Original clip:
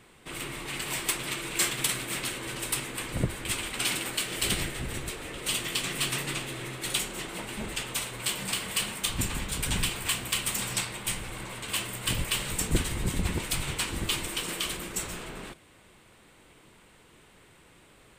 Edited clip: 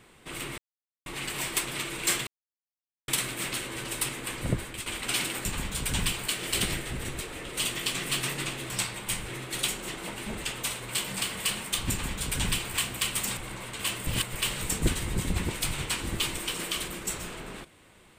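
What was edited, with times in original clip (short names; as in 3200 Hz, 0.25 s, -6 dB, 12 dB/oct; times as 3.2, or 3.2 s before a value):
0.58 insert silence 0.48 s
1.79 insert silence 0.81 s
3.32–3.57 fade out, to -11 dB
9.22–10.04 copy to 4.16
10.68–11.26 move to 6.59
11.96–12.22 reverse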